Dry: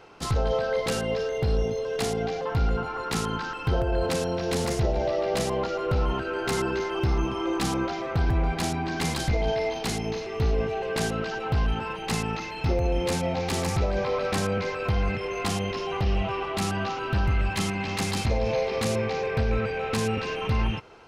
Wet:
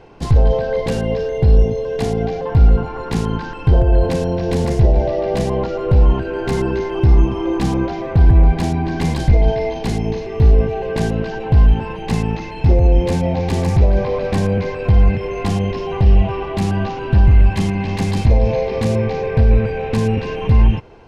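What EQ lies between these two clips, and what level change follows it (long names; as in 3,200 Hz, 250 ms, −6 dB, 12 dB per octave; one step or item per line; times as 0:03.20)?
spectral tilt −2.5 dB per octave
notch filter 1,300 Hz, Q 5.4
+4.5 dB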